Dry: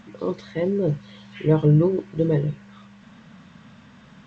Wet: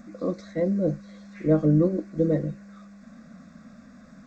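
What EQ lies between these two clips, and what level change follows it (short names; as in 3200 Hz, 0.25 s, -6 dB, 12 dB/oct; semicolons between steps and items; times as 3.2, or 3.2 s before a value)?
bell 1700 Hz -7 dB 1.1 oct; fixed phaser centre 610 Hz, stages 8; notch 3100 Hz, Q 29; +3.0 dB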